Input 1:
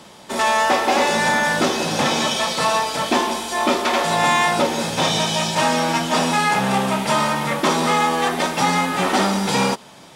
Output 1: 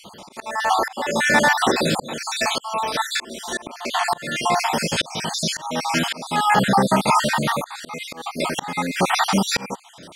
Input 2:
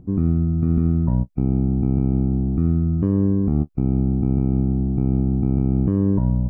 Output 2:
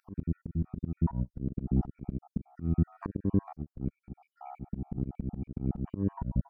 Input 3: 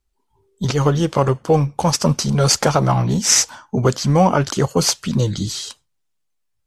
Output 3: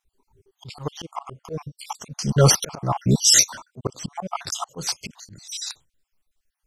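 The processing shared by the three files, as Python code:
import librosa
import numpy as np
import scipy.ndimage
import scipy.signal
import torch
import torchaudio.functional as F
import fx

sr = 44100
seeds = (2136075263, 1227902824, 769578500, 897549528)

y = fx.spec_dropout(x, sr, seeds[0], share_pct=53)
y = fx.auto_swell(y, sr, attack_ms=473.0)
y = y * 10.0 ** (4.5 / 20.0)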